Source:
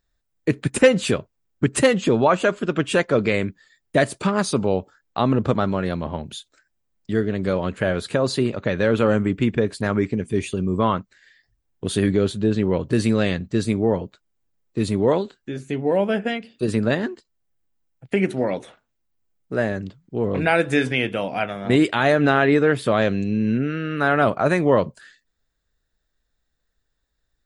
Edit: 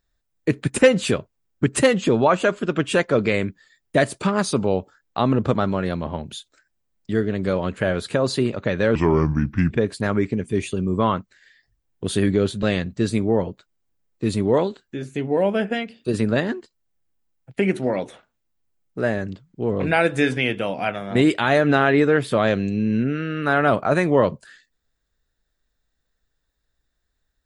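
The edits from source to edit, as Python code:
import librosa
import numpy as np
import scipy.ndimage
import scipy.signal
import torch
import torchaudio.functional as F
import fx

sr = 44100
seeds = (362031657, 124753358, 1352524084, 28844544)

y = fx.edit(x, sr, fx.speed_span(start_s=8.95, length_s=0.56, speed=0.74),
    fx.cut(start_s=12.43, length_s=0.74), tone=tone)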